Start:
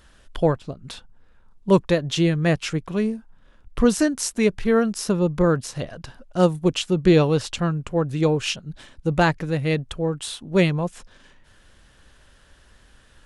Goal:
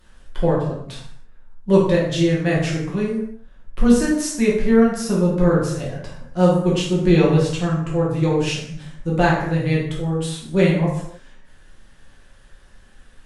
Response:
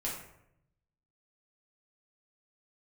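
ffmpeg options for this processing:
-filter_complex "[1:a]atrim=start_sample=2205,afade=type=out:start_time=0.32:duration=0.01,atrim=end_sample=14553,asetrate=37044,aresample=44100[link_01];[0:a][link_01]afir=irnorm=-1:irlink=0,volume=-3dB"

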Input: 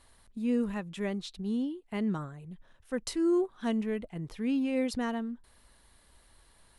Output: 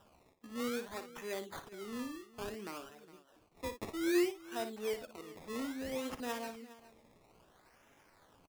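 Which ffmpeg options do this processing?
ffmpeg -i in.wav -filter_complex "[0:a]highpass=frequency=320:width=0.5412,highpass=frequency=320:width=1.3066,asplit=2[link_01][link_02];[link_02]acompressor=threshold=-46dB:ratio=6,volume=0dB[link_03];[link_01][link_03]amix=inputs=2:normalize=0,aphaser=in_gain=1:out_gain=1:delay=4.7:decay=0.34:speed=0.9:type=triangular,acrusher=samples=20:mix=1:aa=0.000001:lfo=1:lforange=20:lforate=0.75,atempo=0.8,asplit=2[link_04][link_05];[link_05]aecho=0:1:57|411:0.316|0.133[link_06];[link_04][link_06]amix=inputs=2:normalize=0,volume=-7dB" out.wav

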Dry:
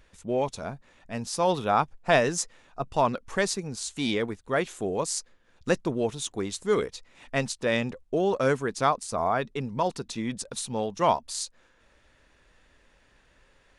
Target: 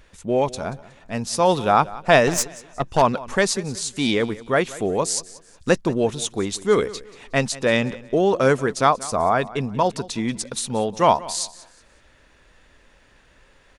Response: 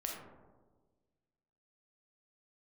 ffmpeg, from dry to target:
-filter_complex "[0:a]aecho=1:1:183|366|549:0.112|0.0348|0.0108,asettb=1/sr,asplit=3[link_01][link_02][link_03];[link_01]atrim=end=2.274[link_04];[link_02]atrim=start=2.27:end=3.02,asetpts=PTS-STARTPTS,afade=type=in:duration=0.004:curve=qsin,afade=type=out:start_time=0.746:duration=0.004:curve=qsin,aeval=exprs='0.282*(cos(1*acos(clip(val(0)/0.282,-1,1)))-cos(1*PI/2))+0.0251*(cos(8*acos(clip(val(0)/0.282,-1,1)))-cos(8*PI/2))':channel_layout=same[link_05];[link_03]atrim=start=3.016[link_06];[link_04][link_05]acrossfade=duration=0.004:curve1=hsin:curve2=qsin[link_07];[link_07][link_06]acrossfade=duration=0.004:curve1=qsin:curve2=hsin,volume=6.5dB"

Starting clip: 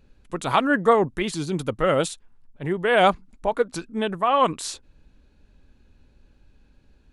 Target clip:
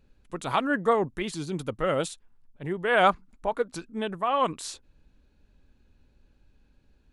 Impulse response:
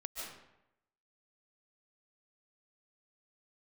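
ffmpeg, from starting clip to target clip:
-filter_complex "[0:a]asettb=1/sr,asplit=3[link_01][link_02][link_03];[link_01]atrim=end=2.634[link_04];[link_02]atrim=start=2.63:end=3.57,asetpts=PTS-STARTPTS,afade=type=in:duration=0.004:curve=qsin,afade=type=out:start_time=0.936:duration=0.004:curve=qsin,adynamicequalizer=threshold=0.0316:dfrequency=1300:dqfactor=1.3:tfrequency=1300:tqfactor=1.3:attack=5:release=100:ratio=0.375:range=3:mode=boostabove:tftype=bell[link_05];[link_03]atrim=start=3.566[link_06];[link_04][link_05]acrossfade=duration=0.004:curve1=hsin:curve2=qsin[link_07];[link_07][link_06]acrossfade=duration=0.004:curve1=qsin:curve2=hsin,volume=-5.5dB"

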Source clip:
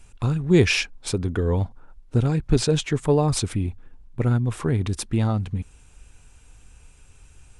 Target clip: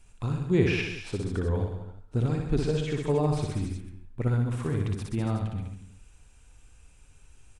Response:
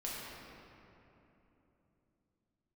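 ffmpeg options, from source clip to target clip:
-filter_complex "[0:a]aecho=1:1:60|126|198.6|278.5|366.3:0.631|0.398|0.251|0.158|0.1,acrossover=split=3000[link_01][link_02];[link_02]acompressor=threshold=-40dB:ratio=4:attack=1:release=60[link_03];[link_01][link_03]amix=inputs=2:normalize=0,asplit=2[link_04][link_05];[1:a]atrim=start_sample=2205,atrim=end_sample=6174,adelay=134[link_06];[link_05][link_06]afir=irnorm=-1:irlink=0,volume=-20.5dB[link_07];[link_04][link_07]amix=inputs=2:normalize=0,volume=-7.5dB"

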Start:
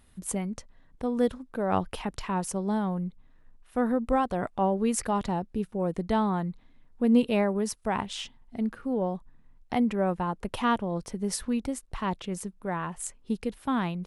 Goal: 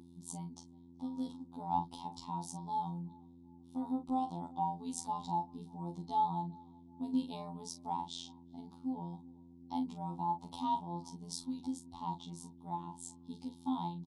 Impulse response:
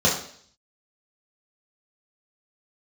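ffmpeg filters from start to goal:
-filter_complex "[0:a]firequalizer=gain_entry='entry(150,0);entry(400,-18);entry(600,1);entry(2300,-28);entry(3500,9);entry(5000,13)':delay=0.05:min_phase=1,aeval=exprs='val(0)+0.00891*(sin(2*PI*60*n/s)+sin(2*PI*2*60*n/s)/2+sin(2*PI*3*60*n/s)/3+sin(2*PI*4*60*n/s)/4+sin(2*PI*5*60*n/s)/5)':channel_layout=same,asplit=3[link_01][link_02][link_03];[link_01]bandpass=frequency=300:width_type=q:width=8,volume=0dB[link_04];[link_02]bandpass=frequency=870:width_type=q:width=8,volume=-6dB[link_05];[link_03]bandpass=frequency=2240:width_type=q:width=8,volume=-9dB[link_06];[link_04][link_05][link_06]amix=inputs=3:normalize=0,afftfilt=real='hypot(re,im)*cos(PI*b)':imag='0':win_size=2048:overlap=0.75,asplit=2[link_07][link_08];[link_08]adelay=37,volume=-9dB[link_09];[link_07][link_09]amix=inputs=2:normalize=0,asplit=2[link_10][link_11];[link_11]adelay=379,lowpass=frequency=800:poles=1,volume=-23dB,asplit=2[link_12][link_13];[link_13]adelay=379,lowpass=frequency=800:poles=1,volume=0.5,asplit=2[link_14][link_15];[link_15]adelay=379,lowpass=frequency=800:poles=1,volume=0.5[link_16];[link_12][link_14][link_16]amix=inputs=3:normalize=0[link_17];[link_10][link_17]amix=inputs=2:normalize=0,volume=11.5dB"

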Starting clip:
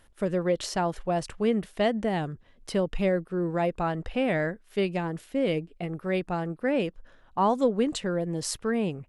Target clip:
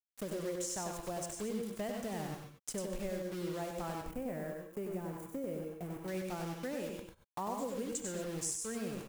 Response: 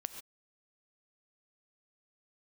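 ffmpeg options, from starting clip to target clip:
-filter_complex "[0:a]highshelf=frequency=5300:width_type=q:width=3:gain=10,acrusher=bits=5:mix=0:aa=0.000001[link_01];[1:a]atrim=start_sample=2205[link_02];[link_01][link_02]afir=irnorm=-1:irlink=0,acompressor=threshold=-34dB:ratio=3,asettb=1/sr,asplit=3[link_03][link_04][link_05];[link_03]atrim=end=4.014[link_06];[link_04]atrim=start=4.01:end=6.08,asetpts=PTS-STARTPTS,afade=type=in:duration=0.004:curve=qsin,afade=type=out:start_time=2.066:duration=0.004:curve=qsin,equalizer=frequency=4200:width_type=o:width=2.2:gain=-15[link_07];[link_05]atrim=start=6.076[link_08];[link_06][link_07]acrossfade=duration=0.004:curve1=hsin:curve2=qsin[link_09];[link_09][link_08]acrossfade=duration=0.004:curve1=qsin:curve2=hsin,aecho=1:1:96:0.531,volume=-5dB"

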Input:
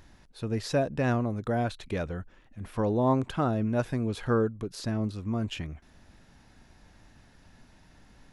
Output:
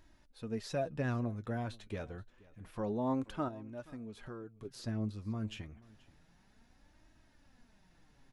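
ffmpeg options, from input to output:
ffmpeg -i in.wav -filter_complex "[0:a]asettb=1/sr,asplit=3[link_01][link_02][link_03];[link_01]atrim=end=3.484[link_04];[link_02]atrim=start=3.48:end=4.65,asetpts=PTS-STARTPTS,afade=type=in:duration=0.004:curve=qsin,afade=type=out:start_time=1.166:duration=0.004:curve=qsin,acompressor=threshold=-36dB:ratio=3[link_05];[link_03]atrim=start=4.646[link_06];[link_04][link_05]acrossfade=duration=0.004:curve1=hsin:curve2=qsin[link_07];[link_07][link_06]acrossfade=duration=0.004:curve1=qsin:curve2=hsin,flanger=delay=3.1:depth=6.4:regen=40:speed=0.28:shape=sinusoidal,asplit=2[link_08][link_09];[link_09]aecho=0:1:479:0.075[link_10];[link_08][link_10]amix=inputs=2:normalize=0,volume=-5.5dB" out.wav

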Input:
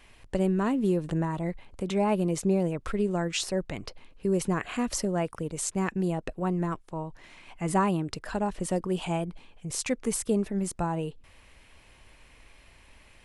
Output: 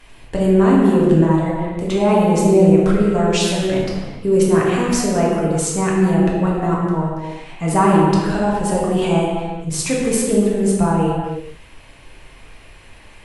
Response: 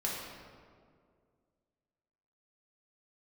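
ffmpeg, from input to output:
-filter_complex "[1:a]atrim=start_sample=2205,afade=type=out:start_time=0.38:duration=0.01,atrim=end_sample=17199,asetrate=31311,aresample=44100[link_01];[0:a][link_01]afir=irnorm=-1:irlink=0,volume=5dB"

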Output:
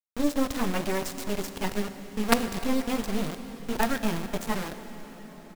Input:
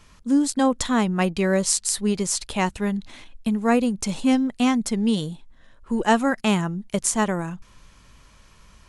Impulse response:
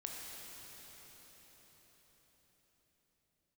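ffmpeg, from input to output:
-filter_complex "[0:a]flanger=delay=18:depth=4.3:speed=0.63,adynamicsmooth=sensitivity=0.5:basefreq=3600,atempo=1.6,acrusher=bits=3:dc=4:mix=0:aa=0.000001,asplit=2[link_01][link_02];[1:a]atrim=start_sample=2205[link_03];[link_02][link_03]afir=irnorm=-1:irlink=0,volume=-4dB[link_04];[link_01][link_04]amix=inputs=2:normalize=0,volume=-1dB"

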